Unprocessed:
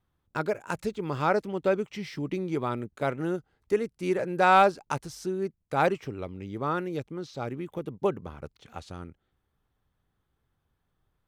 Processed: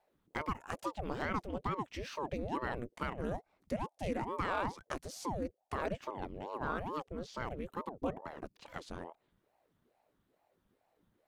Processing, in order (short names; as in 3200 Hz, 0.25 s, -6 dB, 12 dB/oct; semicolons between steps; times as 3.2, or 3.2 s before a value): limiter -18.5 dBFS, peak gain reduction 8 dB; compressor 1.5:1, threshold -46 dBFS, peak gain reduction 8.5 dB; ring modulator with a swept carrier 440 Hz, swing 75%, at 2.3 Hz; gain +2.5 dB